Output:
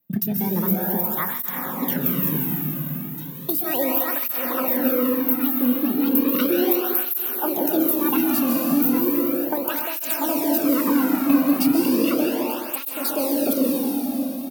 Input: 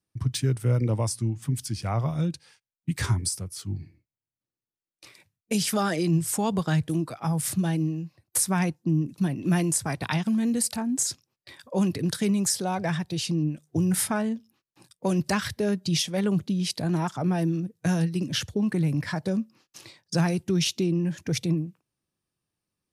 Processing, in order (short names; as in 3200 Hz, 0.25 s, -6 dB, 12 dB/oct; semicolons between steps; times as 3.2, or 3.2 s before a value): resonant high shelf 6800 Hz +12.5 dB, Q 3; compressor, threshold -24 dBFS, peak gain reduction 20 dB; wide varispeed 1.58×; doubler 28 ms -13 dB; plate-style reverb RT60 4.8 s, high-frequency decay 0.85×, pre-delay 0.115 s, DRR -2.5 dB; tape flanging out of phase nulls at 0.35 Hz, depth 2.3 ms; gain +6 dB